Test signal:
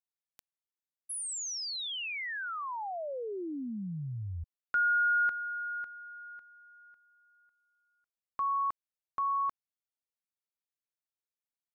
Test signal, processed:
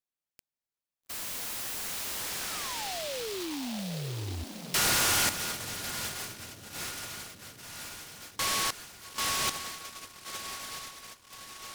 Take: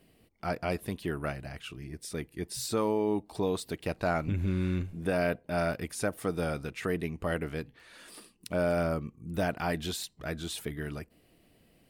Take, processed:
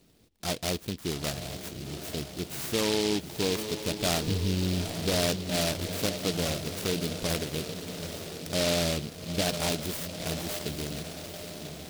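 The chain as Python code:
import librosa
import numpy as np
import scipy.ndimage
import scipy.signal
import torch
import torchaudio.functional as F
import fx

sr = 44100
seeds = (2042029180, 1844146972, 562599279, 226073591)

y = fx.echo_diffused(x, sr, ms=837, feedback_pct=63, wet_db=-8.5)
y = fx.noise_mod_delay(y, sr, seeds[0], noise_hz=3600.0, depth_ms=0.19)
y = y * librosa.db_to_amplitude(1.0)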